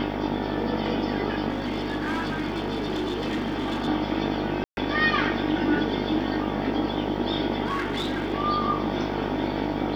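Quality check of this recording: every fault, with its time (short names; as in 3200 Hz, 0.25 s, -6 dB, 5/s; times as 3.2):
buzz 50 Hz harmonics 19 -31 dBFS
1.5–3.88 clipped -23.5 dBFS
4.64–4.77 gap 0.131 s
7.65–8.34 clipped -23 dBFS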